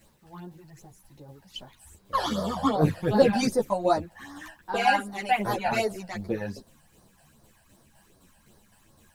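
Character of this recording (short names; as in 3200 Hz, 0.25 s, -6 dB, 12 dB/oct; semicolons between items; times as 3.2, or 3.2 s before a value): phasing stages 12, 2.6 Hz, lowest notch 360–2700 Hz; a quantiser's noise floor 12-bit, dither none; tremolo saw down 3.9 Hz, depth 45%; a shimmering, thickened sound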